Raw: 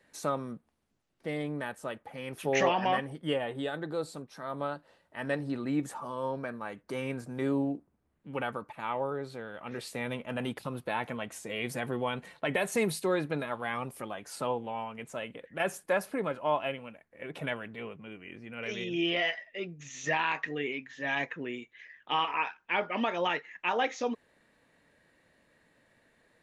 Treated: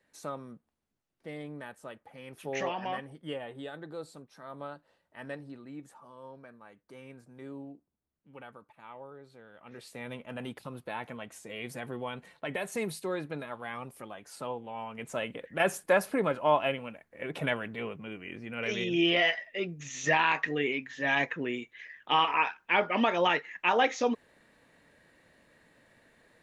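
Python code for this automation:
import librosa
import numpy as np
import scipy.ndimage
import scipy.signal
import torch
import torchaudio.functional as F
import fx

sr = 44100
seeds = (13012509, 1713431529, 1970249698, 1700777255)

y = fx.gain(x, sr, db=fx.line((5.23, -7.0), (5.66, -14.0), (9.24, -14.0), (10.13, -5.0), (14.67, -5.0), (15.13, 4.0)))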